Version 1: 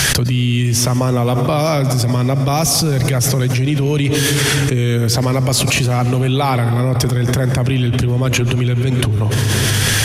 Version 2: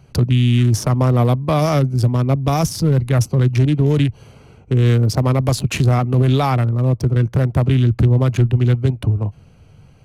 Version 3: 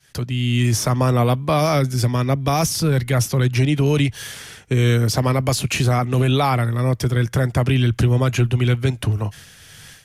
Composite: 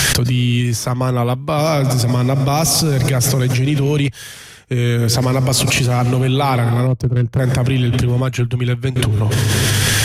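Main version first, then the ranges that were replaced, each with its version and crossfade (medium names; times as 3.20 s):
1
0.61–1.58 s: from 3
4.08–4.98 s: from 3
6.87–7.39 s: from 2
8.21–8.96 s: from 3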